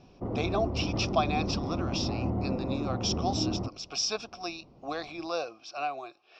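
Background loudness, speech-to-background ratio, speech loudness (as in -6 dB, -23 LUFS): -33.0 LUFS, -0.5 dB, -33.5 LUFS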